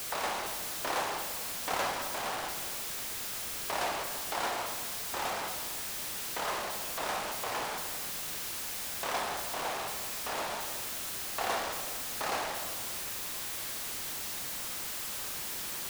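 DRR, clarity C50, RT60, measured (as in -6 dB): 5.0 dB, 5.5 dB, 1.5 s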